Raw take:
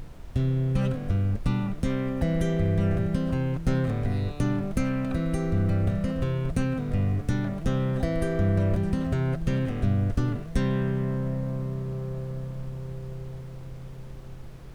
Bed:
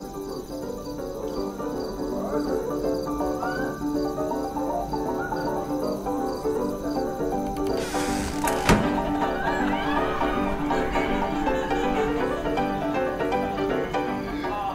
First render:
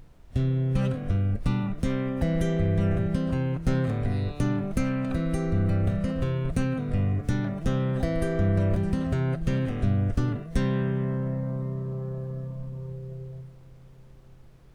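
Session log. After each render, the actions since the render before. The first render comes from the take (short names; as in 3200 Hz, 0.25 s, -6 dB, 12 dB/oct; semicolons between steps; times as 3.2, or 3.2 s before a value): noise print and reduce 10 dB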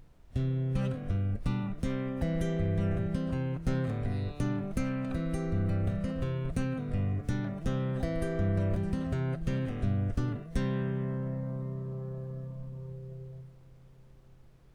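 gain -5.5 dB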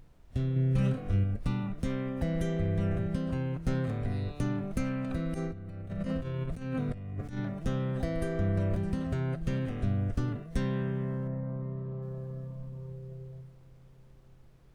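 0.53–1.24 doubler 30 ms -3 dB; 5.34–7.38 negative-ratio compressor -34 dBFS, ratio -0.5; 11.27–12.01 LPF 2000 Hz -> 3600 Hz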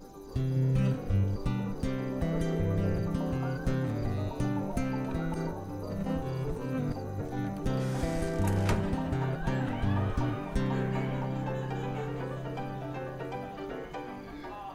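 add bed -13.5 dB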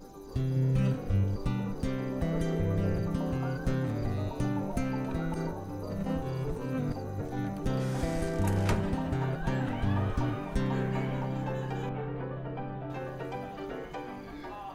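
11.89–12.9 air absorption 360 m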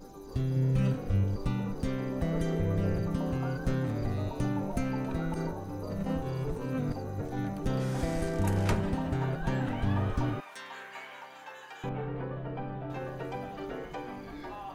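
10.4–11.84 HPF 1200 Hz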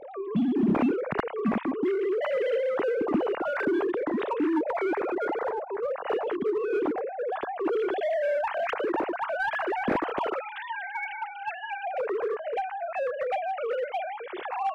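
sine-wave speech; in parallel at -4 dB: hard clip -30 dBFS, distortion -10 dB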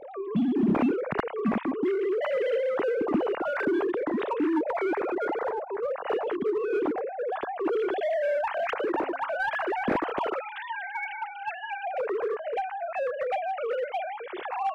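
8.62–9.54 de-hum 270.2 Hz, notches 3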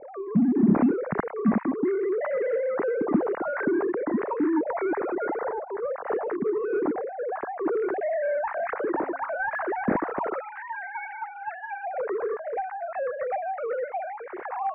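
steep low-pass 2100 Hz 48 dB/oct; dynamic EQ 190 Hz, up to +6 dB, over -39 dBFS, Q 1.5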